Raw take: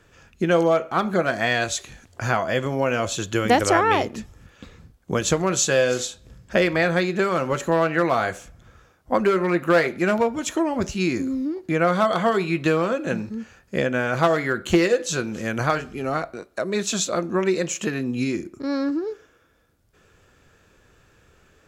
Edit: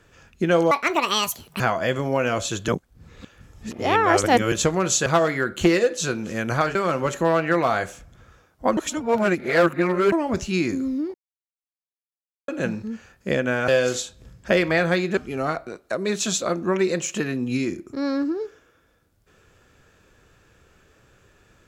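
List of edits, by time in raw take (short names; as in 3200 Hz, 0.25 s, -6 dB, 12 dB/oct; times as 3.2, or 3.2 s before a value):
0.71–2.27 speed 175%
3.35–5.19 reverse
5.73–7.22 swap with 14.15–15.84
9.24–10.59 reverse
11.61–12.95 mute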